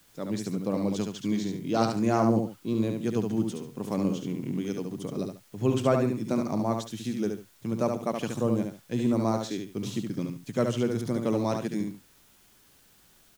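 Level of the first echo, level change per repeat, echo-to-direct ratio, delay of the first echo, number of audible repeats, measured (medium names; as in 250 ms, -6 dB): -5.0 dB, -12.0 dB, -4.5 dB, 71 ms, 2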